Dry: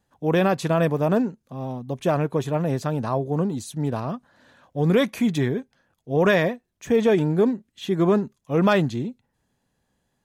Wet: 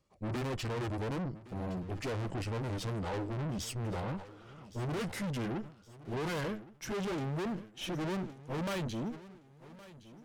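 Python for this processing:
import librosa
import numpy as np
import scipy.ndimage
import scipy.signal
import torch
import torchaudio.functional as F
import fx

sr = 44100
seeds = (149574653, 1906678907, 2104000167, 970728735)

p1 = fx.pitch_glide(x, sr, semitones=-6.5, runs='ending unshifted')
p2 = fx.rider(p1, sr, range_db=4, speed_s=0.5)
p3 = p1 + (p2 * 10.0 ** (-0.5 / 20.0))
p4 = fx.notch(p3, sr, hz=700.0, q=13.0)
p5 = fx.tube_stage(p4, sr, drive_db=29.0, bias=0.7)
p6 = p5 + fx.echo_feedback(p5, sr, ms=1116, feedback_pct=43, wet_db=-18.0, dry=0)
p7 = fx.sustainer(p6, sr, db_per_s=140.0)
y = p7 * 10.0 ** (-5.0 / 20.0)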